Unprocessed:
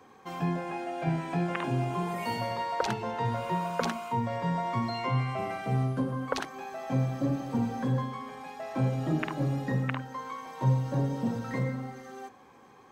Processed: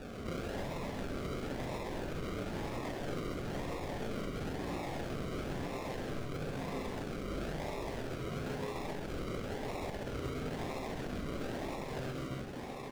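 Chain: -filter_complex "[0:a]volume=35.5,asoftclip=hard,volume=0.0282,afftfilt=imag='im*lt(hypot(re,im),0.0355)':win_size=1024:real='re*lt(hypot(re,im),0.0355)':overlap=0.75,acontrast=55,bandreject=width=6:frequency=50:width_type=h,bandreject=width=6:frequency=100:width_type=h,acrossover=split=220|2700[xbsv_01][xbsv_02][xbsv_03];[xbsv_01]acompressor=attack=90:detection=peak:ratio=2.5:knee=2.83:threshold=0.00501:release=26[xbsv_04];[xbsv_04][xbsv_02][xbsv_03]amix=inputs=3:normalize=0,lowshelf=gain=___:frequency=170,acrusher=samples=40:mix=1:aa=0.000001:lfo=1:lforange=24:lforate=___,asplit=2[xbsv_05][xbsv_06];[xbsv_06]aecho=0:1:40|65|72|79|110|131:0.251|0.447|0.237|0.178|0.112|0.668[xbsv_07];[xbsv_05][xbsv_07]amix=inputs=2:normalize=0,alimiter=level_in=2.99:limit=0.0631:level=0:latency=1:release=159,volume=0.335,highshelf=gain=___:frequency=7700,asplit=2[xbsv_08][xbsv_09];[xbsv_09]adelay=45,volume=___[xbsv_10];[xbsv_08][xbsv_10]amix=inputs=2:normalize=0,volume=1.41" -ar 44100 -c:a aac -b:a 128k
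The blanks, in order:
5.5, 1, -10.5, 0.251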